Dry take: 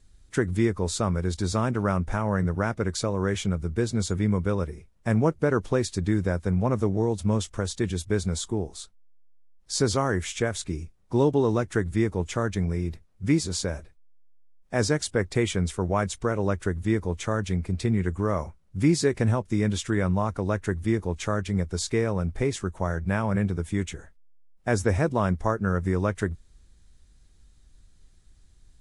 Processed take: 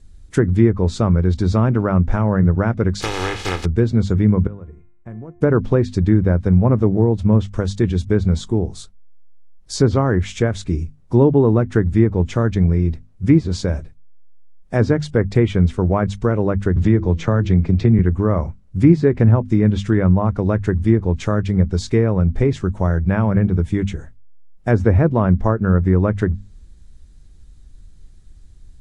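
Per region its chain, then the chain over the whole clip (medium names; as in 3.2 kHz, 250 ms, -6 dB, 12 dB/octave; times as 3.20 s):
3.00–3.64 s: spectral contrast reduction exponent 0.15 + comb 2.4 ms, depth 55%
4.47–5.41 s: compression, threshold -25 dBFS + boxcar filter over 9 samples + feedback comb 350 Hz, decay 0.84 s, mix 80%
16.76–17.99 s: low-pass 7.2 kHz 24 dB/octave + de-hum 164.8 Hz, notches 3 + three bands compressed up and down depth 70%
whole clip: low-pass that closes with the level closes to 2 kHz, closed at -19 dBFS; bass shelf 380 Hz +10 dB; hum notches 50/100/150/200/250 Hz; trim +3 dB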